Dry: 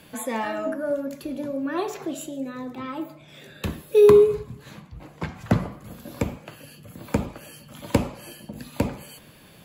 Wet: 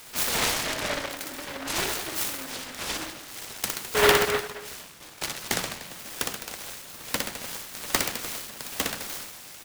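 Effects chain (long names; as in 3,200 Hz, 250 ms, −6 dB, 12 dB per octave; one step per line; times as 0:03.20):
high-pass filter 590 Hz 6 dB per octave
tilt shelving filter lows −9 dB
reverse bouncing-ball delay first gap 60 ms, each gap 1.15×, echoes 5
short delay modulated by noise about 1,200 Hz, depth 0.34 ms
level +1.5 dB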